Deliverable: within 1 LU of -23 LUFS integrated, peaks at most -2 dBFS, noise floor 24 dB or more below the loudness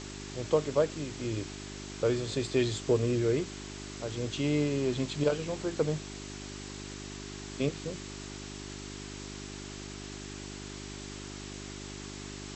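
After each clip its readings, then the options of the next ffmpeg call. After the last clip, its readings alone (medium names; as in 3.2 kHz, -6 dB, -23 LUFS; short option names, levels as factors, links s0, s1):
hum 50 Hz; highest harmonic 400 Hz; hum level -42 dBFS; noise floor -43 dBFS; noise floor target -58 dBFS; loudness -34.0 LUFS; peak level -13.5 dBFS; loudness target -23.0 LUFS
-> -af "bandreject=f=50:t=h:w=4,bandreject=f=100:t=h:w=4,bandreject=f=150:t=h:w=4,bandreject=f=200:t=h:w=4,bandreject=f=250:t=h:w=4,bandreject=f=300:t=h:w=4,bandreject=f=350:t=h:w=4,bandreject=f=400:t=h:w=4"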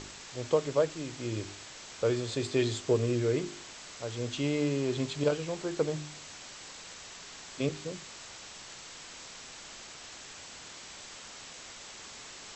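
hum not found; noise floor -48 dBFS; noise floor target -59 dBFS
-> -af "afftdn=nr=11:nf=-48"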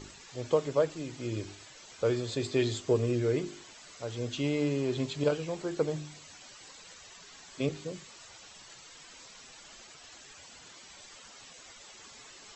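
noise floor -52 dBFS; noise floor target -56 dBFS
-> -af "afftdn=nr=6:nf=-52"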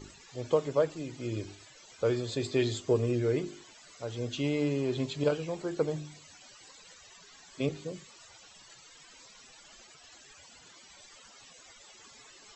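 noise floor -55 dBFS; noise floor target -56 dBFS
-> -af "afftdn=nr=6:nf=-55"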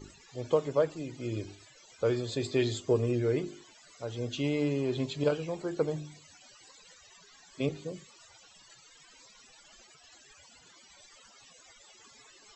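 noise floor -58 dBFS; loudness -32.0 LUFS; peak level -13.5 dBFS; loudness target -23.0 LUFS
-> -af "volume=2.82"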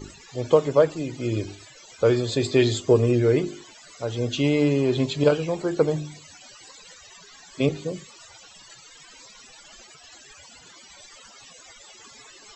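loudness -23.0 LUFS; peak level -4.5 dBFS; noise floor -49 dBFS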